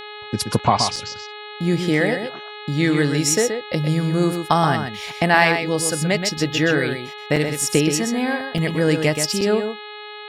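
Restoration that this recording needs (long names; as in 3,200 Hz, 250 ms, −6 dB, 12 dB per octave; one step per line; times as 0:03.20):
hum removal 419.8 Hz, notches 10
repair the gap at 0:00.59/0:00.96/0:07.36/0:08.58/0:09.41, 4.1 ms
echo removal 126 ms −7 dB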